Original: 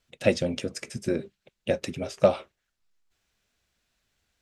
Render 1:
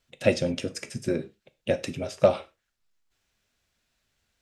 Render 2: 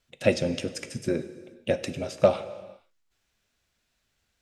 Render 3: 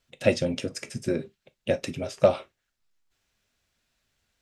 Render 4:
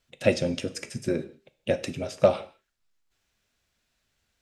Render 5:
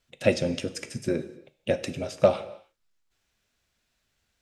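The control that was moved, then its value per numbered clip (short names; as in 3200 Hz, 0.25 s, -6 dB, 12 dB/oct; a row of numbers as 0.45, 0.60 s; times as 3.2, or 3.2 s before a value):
non-linear reverb, gate: 140, 510, 80, 210, 330 ms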